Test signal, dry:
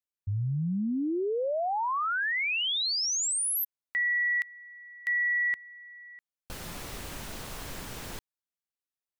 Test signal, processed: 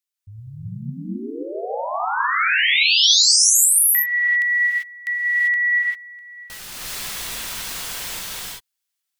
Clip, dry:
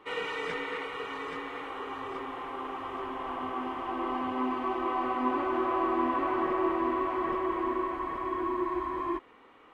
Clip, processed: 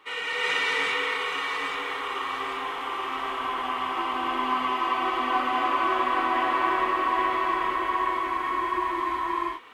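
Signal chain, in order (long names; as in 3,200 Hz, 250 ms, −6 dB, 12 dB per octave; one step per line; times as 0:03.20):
tilt shelving filter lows −8.5 dB
reverb whose tail is shaped and stops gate 420 ms rising, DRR −6.5 dB
level −1 dB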